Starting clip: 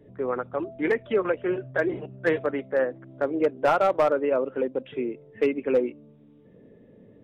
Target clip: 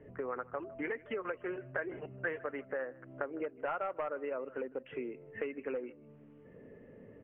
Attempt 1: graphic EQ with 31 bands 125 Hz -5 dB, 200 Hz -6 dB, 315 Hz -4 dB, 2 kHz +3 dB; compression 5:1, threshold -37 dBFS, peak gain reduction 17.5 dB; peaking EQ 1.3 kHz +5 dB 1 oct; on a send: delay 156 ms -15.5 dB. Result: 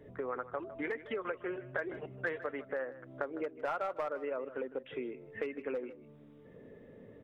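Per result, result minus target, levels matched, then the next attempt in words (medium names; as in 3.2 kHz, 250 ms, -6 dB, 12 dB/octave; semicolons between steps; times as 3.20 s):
echo-to-direct +6.5 dB; 4 kHz band +2.5 dB
graphic EQ with 31 bands 125 Hz -5 dB, 200 Hz -6 dB, 315 Hz -4 dB, 2 kHz +3 dB; compression 5:1, threshold -37 dBFS, peak gain reduction 17.5 dB; peaking EQ 1.3 kHz +5 dB 1 oct; on a send: delay 156 ms -22 dB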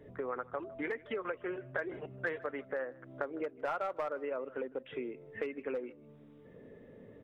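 4 kHz band +2.5 dB
graphic EQ with 31 bands 125 Hz -5 dB, 200 Hz -6 dB, 315 Hz -4 dB, 2 kHz +3 dB; compression 5:1, threshold -37 dBFS, peak gain reduction 17.5 dB; Chebyshev low-pass 2.9 kHz, order 5; peaking EQ 1.3 kHz +5 dB 1 oct; on a send: delay 156 ms -22 dB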